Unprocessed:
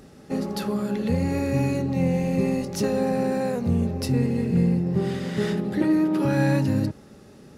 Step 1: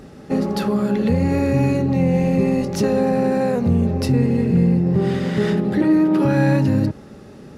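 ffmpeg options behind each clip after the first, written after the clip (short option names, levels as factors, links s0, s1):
-filter_complex "[0:a]highshelf=f=4300:g=-8,asplit=2[s0][s1];[s1]alimiter=limit=0.119:level=0:latency=1:release=116,volume=1.41[s2];[s0][s2]amix=inputs=2:normalize=0"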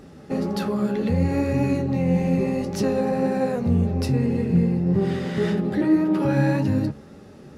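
-af "flanger=delay=9.8:depth=4.6:regen=52:speed=1.8:shape=triangular"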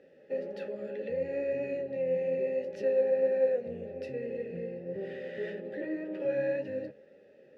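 -filter_complex "[0:a]asplit=3[s0][s1][s2];[s0]bandpass=f=530:t=q:w=8,volume=1[s3];[s1]bandpass=f=1840:t=q:w=8,volume=0.501[s4];[s2]bandpass=f=2480:t=q:w=8,volume=0.355[s5];[s3][s4][s5]amix=inputs=3:normalize=0"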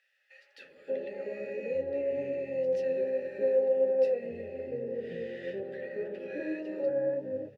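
-filter_complex "[0:a]acrossover=split=160|1400[s0][s1][s2];[s1]adelay=580[s3];[s0]adelay=640[s4];[s4][s3][s2]amix=inputs=3:normalize=0,volume=1.12"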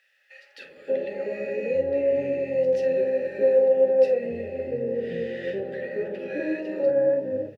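-filter_complex "[0:a]asplit=2[s0][s1];[s1]adelay=47,volume=0.282[s2];[s0][s2]amix=inputs=2:normalize=0,volume=2.37"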